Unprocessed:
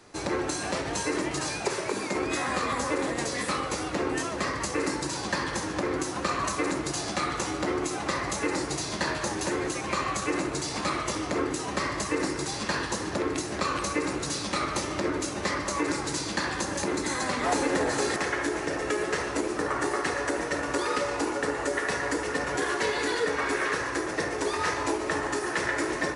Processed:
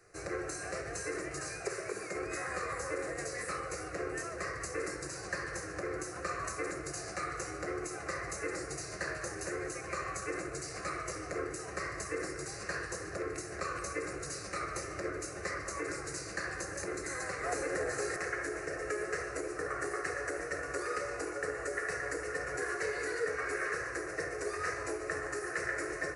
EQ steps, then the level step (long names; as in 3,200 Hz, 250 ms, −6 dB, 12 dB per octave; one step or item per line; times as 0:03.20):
notch filter 590 Hz, Q 12
phaser with its sweep stopped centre 910 Hz, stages 6
−5.5 dB